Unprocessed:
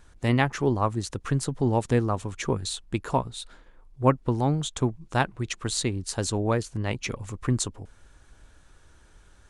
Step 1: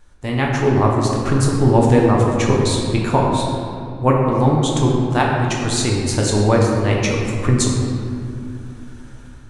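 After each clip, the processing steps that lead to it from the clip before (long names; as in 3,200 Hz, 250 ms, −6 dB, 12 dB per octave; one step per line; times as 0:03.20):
automatic gain control gain up to 9 dB
convolution reverb RT60 2.5 s, pre-delay 7 ms, DRR −2.5 dB
level −1.5 dB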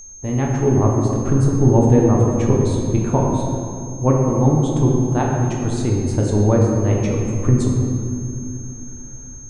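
steady tone 6,400 Hz −22 dBFS
tilt shelving filter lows +8.5 dB, about 1,100 Hz
level −7 dB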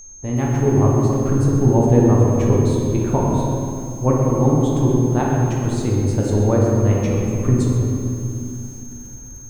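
spring reverb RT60 1.4 s, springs 50 ms, chirp 20 ms, DRR 5 dB
feedback echo at a low word length 128 ms, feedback 35%, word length 6 bits, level −12.5 dB
level −1.5 dB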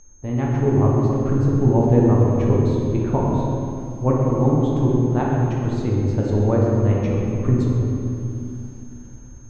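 high-frequency loss of the air 170 metres
level −1.5 dB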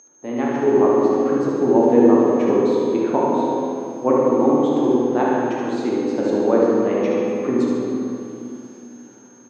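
high-pass filter 250 Hz 24 dB per octave
on a send: repeating echo 74 ms, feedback 58%, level −5 dB
on the sum: level +3.5 dB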